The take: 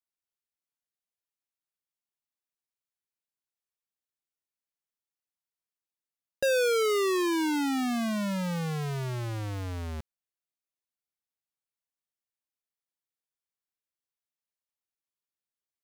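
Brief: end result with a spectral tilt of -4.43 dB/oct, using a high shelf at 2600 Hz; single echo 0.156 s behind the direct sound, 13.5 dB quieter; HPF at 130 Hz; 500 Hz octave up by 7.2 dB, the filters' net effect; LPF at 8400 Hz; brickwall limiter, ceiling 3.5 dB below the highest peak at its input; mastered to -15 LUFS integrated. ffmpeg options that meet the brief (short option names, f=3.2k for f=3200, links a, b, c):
-af "highpass=130,lowpass=8.4k,equalizer=f=500:t=o:g=8,highshelf=f=2.6k:g=8.5,alimiter=limit=-15dB:level=0:latency=1,aecho=1:1:156:0.211,volume=10.5dB"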